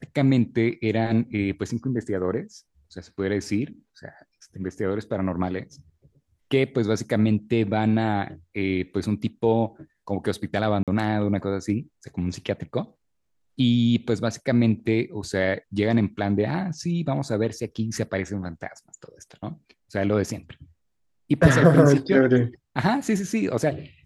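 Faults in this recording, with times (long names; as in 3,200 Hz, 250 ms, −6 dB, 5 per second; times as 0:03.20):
0:10.83–0:10.88: drop-out 47 ms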